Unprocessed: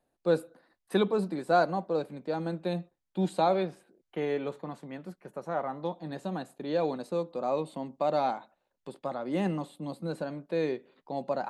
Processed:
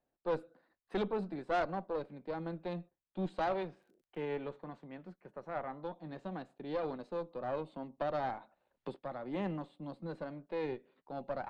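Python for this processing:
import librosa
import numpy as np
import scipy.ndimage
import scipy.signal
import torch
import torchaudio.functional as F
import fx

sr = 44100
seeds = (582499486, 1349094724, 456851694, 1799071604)

y = scipy.signal.sosfilt(scipy.signal.butter(2, 3500.0, 'lowpass', fs=sr, output='sos'), x)
y = fx.tube_stage(y, sr, drive_db=22.0, bias=0.65)
y = fx.dmg_crackle(y, sr, seeds[0], per_s=fx.line((3.57, 22.0), (4.35, 82.0)), level_db=-56.0, at=(3.57, 4.35), fade=0.02)
y = fx.band_squash(y, sr, depth_pct=70, at=(7.97, 8.96))
y = F.gain(torch.from_numpy(y), -4.0).numpy()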